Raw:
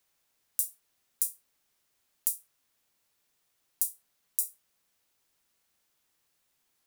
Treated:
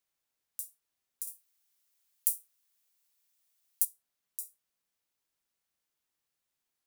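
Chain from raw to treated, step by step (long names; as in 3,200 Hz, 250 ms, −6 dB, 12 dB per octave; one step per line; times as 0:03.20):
0:01.27–0:03.85: spectral tilt +3 dB per octave
level −10.5 dB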